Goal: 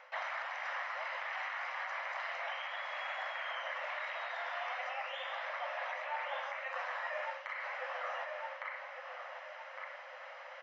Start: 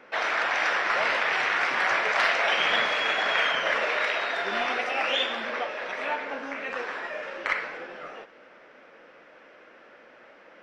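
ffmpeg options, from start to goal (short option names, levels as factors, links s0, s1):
-filter_complex "[0:a]asplit=2[s0][s1];[s1]adelay=1158,lowpass=f=2000:p=1,volume=0.316,asplit=2[s2][s3];[s3]adelay=1158,lowpass=f=2000:p=1,volume=0.37,asplit=2[s4][s5];[s5]adelay=1158,lowpass=f=2000:p=1,volume=0.37,asplit=2[s6][s7];[s7]adelay=1158,lowpass=f=2000:p=1,volume=0.37[s8];[s2][s4][s6][s8]amix=inputs=4:normalize=0[s9];[s0][s9]amix=inputs=2:normalize=0,afftfilt=real='re*between(b*sr/4096,500,7500)':imag='im*between(b*sr/4096,500,7500)':win_size=4096:overlap=0.75,aecho=1:1:1:0.31,areverse,acompressor=threshold=0.0141:ratio=6,areverse,alimiter=level_in=2.24:limit=0.0631:level=0:latency=1:release=422,volume=0.447,acrossover=split=2500[s10][s11];[s11]acompressor=threshold=0.00158:ratio=4:attack=1:release=60[s12];[s10][s12]amix=inputs=2:normalize=0,volume=1.41"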